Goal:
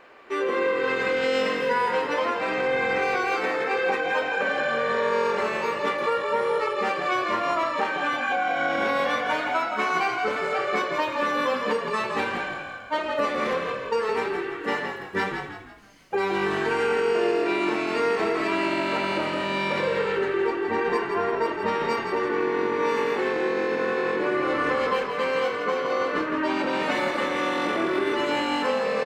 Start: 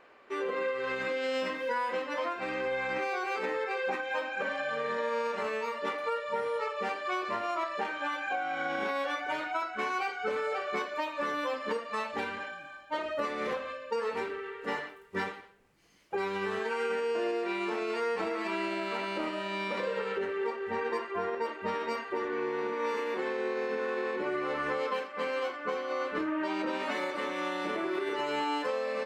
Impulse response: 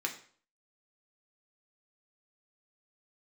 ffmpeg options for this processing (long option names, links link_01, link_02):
-filter_complex "[0:a]bandreject=frequency=62.66:width_type=h:width=4,bandreject=frequency=125.32:width_type=h:width=4,bandreject=frequency=187.98:width_type=h:width=4,bandreject=frequency=250.64:width_type=h:width=4,bandreject=frequency=313.3:width_type=h:width=4,bandreject=frequency=375.96:width_type=h:width=4,bandreject=frequency=438.62:width_type=h:width=4,bandreject=frequency=501.28:width_type=h:width=4,bandreject=frequency=563.94:width_type=h:width=4,bandreject=frequency=626.6:width_type=h:width=4,bandreject=frequency=689.26:width_type=h:width=4,bandreject=frequency=751.92:width_type=h:width=4,bandreject=frequency=814.58:width_type=h:width=4,bandreject=frequency=877.24:width_type=h:width=4,bandreject=frequency=939.9:width_type=h:width=4,bandreject=frequency=1002.56:width_type=h:width=4,bandreject=frequency=1065.22:width_type=h:width=4,bandreject=frequency=1127.88:width_type=h:width=4,bandreject=frequency=1190.54:width_type=h:width=4,bandreject=frequency=1253.2:width_type=h:width=4,bandreject=frequency=1315.86:width_type=h:width=4,bandreject=frequency=1378.52:width_type=h:width=4,bandreject=frequency=1441.18:width_type=h:width=4,bandreject=frequency=1503.84:width_type=h:width=4,asplit=2[link_01][link_02];[link_02]asplit=5[link_03][link_04][link_05][link_06][link_07];[link_03]adelay=166,afreqshift=-45,volume=-7dB[link_08];[link_04]adelay=332,afreqshift=-90,volume=-14.7dB[link_09];[link_05]adelay=498,afreqshift=-135,volume=-22.5dB[link_10];[link_06]adelay=664,afreqshift=-180,volume=-30.2dB[link_11];[link_07]adelay=830,afreqshift=-225,volume=-38dB[link_12];[link_08][link_09][link_10][link_11][link_12]amix=inputs=5:normalize=0[link_13];[link_01][link_13]amix=inputs=2:normalize=0,volume=7.5dB"